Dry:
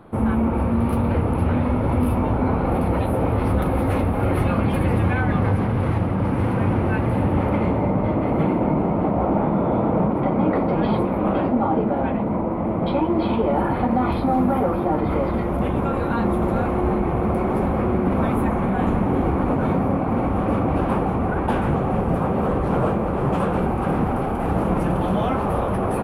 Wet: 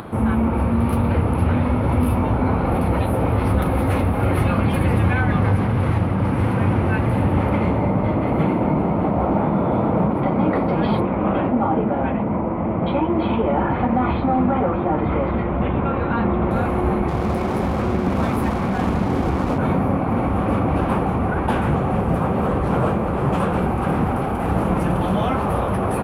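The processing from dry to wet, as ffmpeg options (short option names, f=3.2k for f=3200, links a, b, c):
-filter_complex "[0:a]asettb=1/sr,asplit=3[a][b][c];[a]atrim=end=11.004[d];[b]atrim=start=11:end=16.51,asetpts=PTS-STARTPTS,afade=t=in:d=0.004:c=qsin,afade=t=out:st=5.506:d=0.004:c=qsin,lowpass=f=3.3k:w=0.5412,lowpass=f=3.3k:w=1.3066[e];[c]atrim=start=16.506[f];[d][e]acrossfade=d=0.004:c1=hsin:c2=qsin[g];[g][f]acrossfade=d=0.004:c1=qsin:c2=hsin,asettb=1/sr,asplit=3[h][i][j];[h]atrim=end=17.084[k];[i]atrim=start=17.08:end=19.58,asetpts=PTS-STARTPTS,afade=t=in:d=0.004:c=qsin,afade=t=out:st=2.496:d=0.004:c=qsin,aeval=exprs='sgn(val(0))*max(abs(val(0))-0.0158,0)':c=same[l];[j]atrim=start=19.576[m];[k][l]acrossfade=d=0.004:c1=hsin:c2=qsin[n];[n][m]acrossfade=d=0.004:c1=qsin:c2=hsin,highpass=52,equalizer=f=410:t=o:w=2.9:g=-4,acompressor=mode=upward:threshold=-29dB:ratio=2.5,volume=4dB"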